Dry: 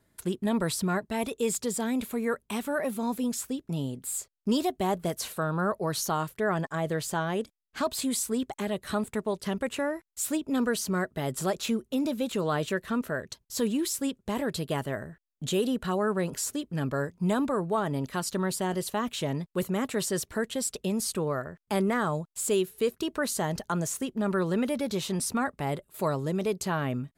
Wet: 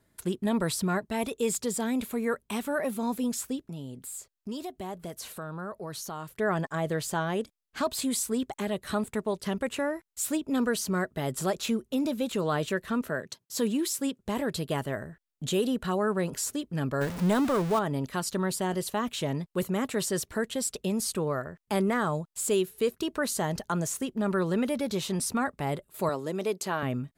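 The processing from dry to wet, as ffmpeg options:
-filter_complex "[0:a]asettb=1/sr,asplit=3[s0][s1][s2];[s0]atrim=end=3.644[s3];[s1]atrim=start=3.64:end=6.36,asetpts=PTS-STARTPTS,afade=t=in:d=0.004:c=qsin,afade=t=out:st=2.716:d=0.004:c=qsin,acompressor=threshold=0.00891:ratio=2:attack=3.2:release=140:knee=1:detection=peak[s4];[s2]atrim=start=6.356[s5];[s3][s4]acrossfade=d=0.004:c1=hsin:c2=qsin[s6];[s6][s5]acrossfade=d=0.004:c1=qsin:c2=hsin,asettb=1/sr,asplit=3[s7][s8][s9];[s7]atrim=end=13.094[s10];[s8]atrim=start=13.09:end=14.19,asetpts=PTS-STARTPTS,afade=t=in:d=0.004:c=qsin,afade=t=out:st=1.096:d=0.004:c=qsin,highpass=f=120:w=0.5412,highpass=f=120:w=1.3066[s11];[s9]atrim=start=14.186[s12];[s10][s11]acrossfade=d=0.004:c1=hsin:c2=qsin[s13];[s13][s12]acrossfade=d=0.004:c1=qsin:c2=hsin,asettb=1/sr,asplit=3[s14][s15][s16];[s14]atrim=end=17.014[s17];[s15]atrim=start=17.01:end=17.79,asetpts=PTS-STARTPTS,afade=t=in:d=0.004:c=qsin,afade=t=out:st=0.776:d=0.004:c=qsin,aeval=exprs='val(0)+0.5*0.0299*sgn(val(0))':c=same[s18];[s16]atrim=start=17.786[s19];[s17][s18]acrossfade=d=0.004:c1=hsin:c2=qsin[s20];[s20][s19]acrossfade=d=0.004:c1=qsin:c2=hsin,asettb=1/sr,asplit=3[s21][s22][s23];[s21]atrim=end=26.094[s24];[s22]atrim=start=26.09:end=26.83,asetpts=PTS-STARTPTS,afade=t=in:d=0.004:c=qsin,afade=t=out:st=0.736:d=0.004:c=qsin,highpass=250[s25];[s23]atrim=start=26.826[s26];[s24][s25]acrossfade=d=0.004:c1=hsin:c2=qsin[s27];[s27][s26]acrossfade=d=0.004:c1=qsin:c2=hsin"

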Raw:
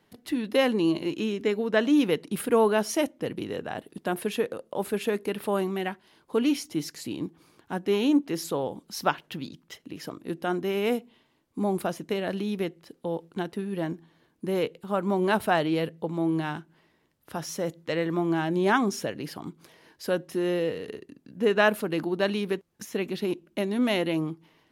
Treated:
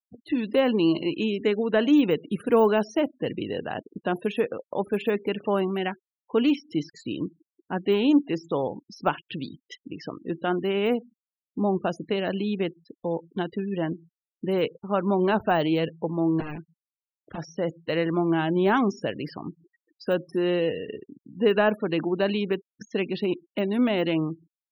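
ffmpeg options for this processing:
-filter_complex "[0:a]asettb=1/sr,asplit=3[s0][s1][s2];[s0]atrim=end=16.404[s3];[s1]atrim=start=16.4:end=17.38,asetpts=PTS-STARTPTS,afade=t=in:d=0.004:c=qsin,afade=t=out:st=0.976:d=0.004:c=qsin,aeval=exprs='(mod(23.7*val(0)+1,2)-1)/23.7':c=same[s4];[s2]atrim=start=17.376[s5];[s3][s4]acrossfade=d=0.004:c1=hsin:c2=qsin[s6];[s6][s5]acrossfade=d=0.004:c1=qsin:c2=hsin,deesser=1,afftfilt=real='re*gte(hypot(re,im),0.01)':imag='im*gte(hypot(re,im),0.01)':win_size=1024:overlap=0.75,equalizer=f=2800:t=o:w=0.31:g=4,volume=1.33"

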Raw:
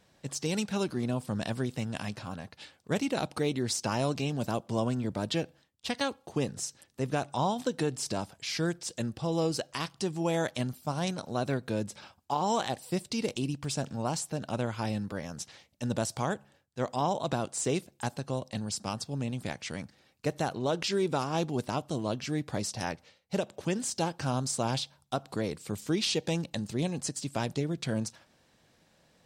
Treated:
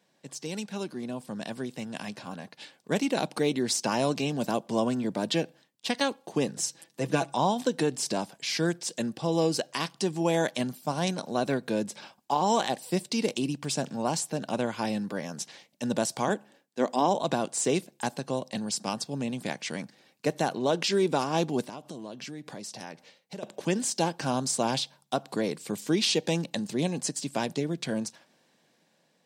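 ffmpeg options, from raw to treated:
-filter_complex "[0:a]asettb=1/sr,asplit=3[s0][s1][s2];[s0]atrim=end=6.594[s3];[s1]atrim=start=6.59:end=7.33,asetpts=PTS-STARTPTS,afade=t=in:d=0.004:c=qsin,afade=t=out:st=0.736:d=0.004:c=qsin,aecho=1:1:6.1:0.65,atrim=end_sample=32634[s4];[s2]atrim=start=7.326[s5];[s3][s4]acrossfade=d=0.004:c1=hsin:c2=qsin[s6];[s6][s5]acrossfade=d=0.004:c1=qsin:c2=hsin,asettb=1/sr,asplit=3[s7][s8][s9];[s7]atrim=end=16.284[s10];[s8]atrim=start=16.28:end=17.15,asetpts=PTS-STARTPTS,afade=t=in:d=0.004:c=qsin,afade=t=out:st=0.866:d=0.004:c=qsin,highpass=f=240:t=q:w=1.5[s11];[s9]atrim=start=17.146[s12];[s10][s11]acrossfade=d=0.004:c1=hsin:c2=qsin[s13];[s13][s12]acrossfade=d=0.004:c1=qsin:c2=hsin,asettb=1/sr,asplit=3[s14][s15][s16];[s14]atrim=end=21.644[s17];[s15]atrim=start=21.64:end=23.43,asetpts=PTS-STARTPTS,afade=t=in:d=0.004:c=qsin,afade=t=out:st=1.786:d=0.004:c=qsin,acompressor=threshold=0.01:ratio=6:attack=3.2:release=140:knee=1:detection=peak[s18];[s16]atrim=start=23.426[s19];[s17][s18]acrossfade=d=0.004:c1=hsin:c2=qsin[s20];[s20][s19]acrossfade=d=0.004:c1=qsin:c2=hsin,highpass=f=160:w=0.5412,highpass=f=160:w=1.3066,bandreject=f=1300:w=10,dynaudnorm=f=870:g=5:m=2.51,volume=0.631"

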